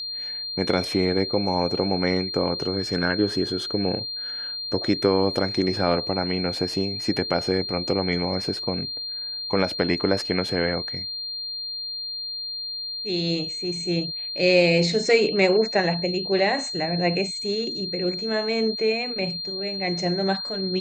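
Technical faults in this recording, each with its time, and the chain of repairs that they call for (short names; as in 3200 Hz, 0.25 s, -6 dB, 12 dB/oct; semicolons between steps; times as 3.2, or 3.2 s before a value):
tone 4200 Hz -29 dBFS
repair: notch 4200 Hz, Q 30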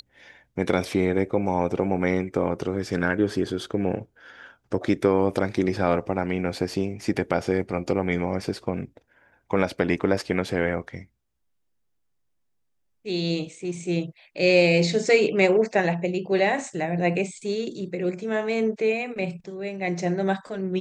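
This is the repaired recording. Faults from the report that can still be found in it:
none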